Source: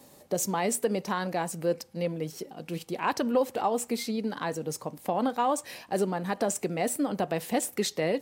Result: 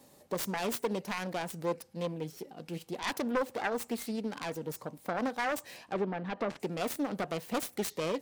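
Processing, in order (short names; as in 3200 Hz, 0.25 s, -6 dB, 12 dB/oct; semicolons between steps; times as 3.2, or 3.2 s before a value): self-modulated delay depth 0.39 ms; 5.76–6.6 treble ducked by the level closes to 2600 Hz, closed at -28 dBFS; gain -4.5 dB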